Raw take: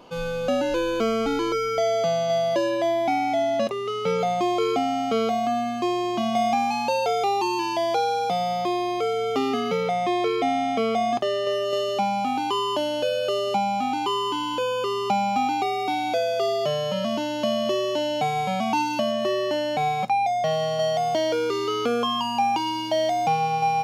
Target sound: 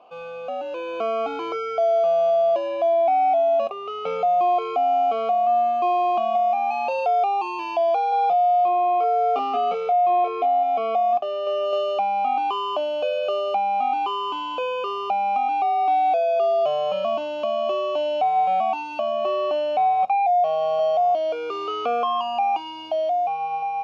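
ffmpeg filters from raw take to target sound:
-filter_complex "[0:a]asettb=1/sr,asplit=3[s0][s1][s2];[s0]atrim=end=8.094[s3];[s1]atrim=start=8.09:end=10.63,asetpts=PTS-STARTPTS,afade=t=in:d=0.004:c=qsin,afade=t=out:st=2.536:d=0.004:c=qsin,asplit=2[s4][s5];[s5]adelay=31,volume=0.631[s6];[s4][s6]amix=inputs=2:normalize=0,atrim=end_sample=112014[s7];[s2]atrim=start=10.626[s8];[s3][s7]acrossfade=d=0.004:c1=hsin:c2=qsin[s9];[s9][s8]acrossfade=d=0.004:c1=qsin:c2=hsin,acontrast=89,asplit=3[s10][s11][s12];[s10]bandpass=f=730:t=q:w=8,volume=1[s13];[s11]bandpass=f=1090:t=q:w=8,volume=0.501[s14];[s12]bandpass=f=2440:t=q:w=8,volume=0.355[s15];[s13][s14][s15]amix=inputs=3:normalize=0,alimiter=limit=0.1:level=0:latency=1:release=475,dynaudnorm=f=110:g=17:m=1.88"

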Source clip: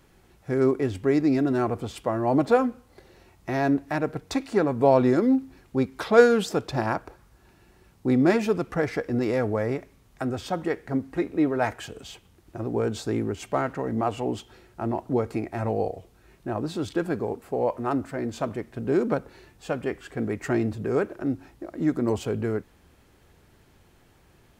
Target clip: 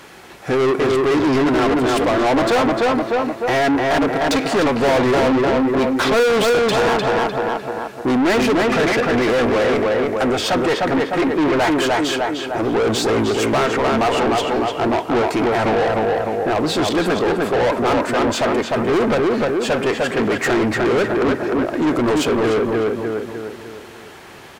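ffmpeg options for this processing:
-filter_complex "[0:a]asplit=2[s0][s1];[s1]adelay=302,lowpass=f=2700:p=1,volume=0.631,asplit=2[s2][s3];[s3]adelay=302,lowpass=f=2700:p=1,volume=0.44,asplit=2[s4][s5];[s5]adelay=302,lowpass=f=2700:p=1,volume=0.44,asplit=2[s6][s7];[s7]adelay=302,lowpass=f=2700:p=1,volume=0.44,asplit=2[s8][s9];[s9]adelay=302,lowpass=f=2700:p=1,volume=0.44,asplit=2[s10][s11];[s11]adelay=302,lowpass=f=2700:p=1,volume=0.44[s12];[s0][s2][s4][s6][s8][s10][s12]amix=inputs=7:normalize=0,asplit=2[s13][s14];[s14]highpass=f=720:p=1,volume=50.1,asoftclip=type=tanh:threshold=0.596[s15];[s13][s15]amix=inputs=2:normalize=0,lowpass=f=4900:p=1,volume=0.501,volume=0.596"

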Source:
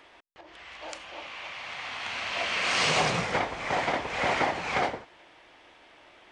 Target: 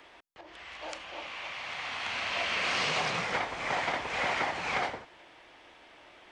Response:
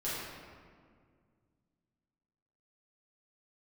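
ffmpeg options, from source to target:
-filter_complex "[0:a]acrossover=split=150|810|5900[s0][s1][s2][s3];[s0]acompressor=threshold=0.00282:ratio=4[s4];[s1]acompressor=threshold=0.0126:ratio=4[s5];[s2]acompressor=threshold=0.0398:ratio=4[s6];[s3]acompressor=threshold=0.002:ratio=4[s7];[s4][s5][s6][s7]amix=inputs=4:normalize=0"

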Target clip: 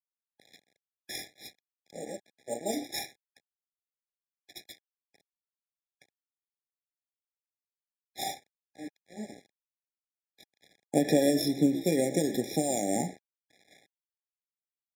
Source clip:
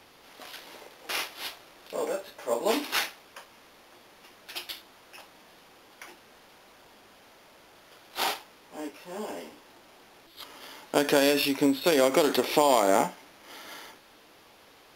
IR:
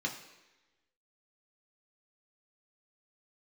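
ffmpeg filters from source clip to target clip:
-filter_complex "[0:a]agate=range=0.0224:threshold=0.00282:ratio=3:detection=peak,bass=f=250:g=14,treble=f=4000:g=14,asplit=2[s0][s1];[1:a]atrim=start_sample=2205,afade=t=out:st=0.16:d=0.01,atrim=end_sample=7497[s2];[s1][s2]afir=irnorm=-1:irlink=0,volume=0.237[s3];[s0][s3]amix=inputs=2:normalize=0,aphaser=in_gain=1:out_gain=1:delay=1.4:decay=0.36:speed=0.18:type=triangular,asplit=4[s4][s5][s6][s7];[s5]adelay=121,afreqshift=56,volume=0.141[s8];[s6]adelay=242,afreqshift=112,volume=0.0495[s9];[s7]adelay=363,afreqshift=168,volume=0.0174[s10];[s4][s8][s9][s10]amix=inputs=4:normalize=0,adynamicequalizer=threshold=0.00891:dfrequency=2700:dqfactor=0.84:tfrequency=2700:tqfactor=0.84:attack=5:release=100:ratio=0.375:range=2:mode=cutabove:tftype=bell,aeval=exprs='val(0)*gte(abs(val(0)),0.0316)':c=same,highpass=150,adynamicsmooth=sensitivity=4.5:basefreq=4000,afftfilt=real='re*eq(mod(floor(b*sr/1024/830),2),0)':imag='im*eq(mod(floor(b*sr/1024/830),2),0)':win_size=1024:overlap=0.75,volume=0.447"

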